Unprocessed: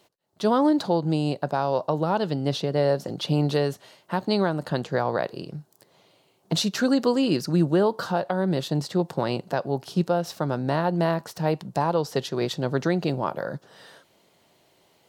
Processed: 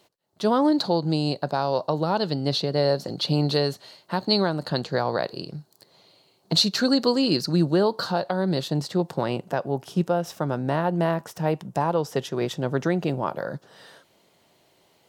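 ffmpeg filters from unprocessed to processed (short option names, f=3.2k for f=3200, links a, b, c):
-af "asetnsamples=n=441:p=0,asendcmd='0.72 equalizer g 12;8.62 equalizer g 2;9.26 equalizer g -9;13.28 equalizer g 1',equalizer=f=4.3k:t=o:w=0.27:g=2.5"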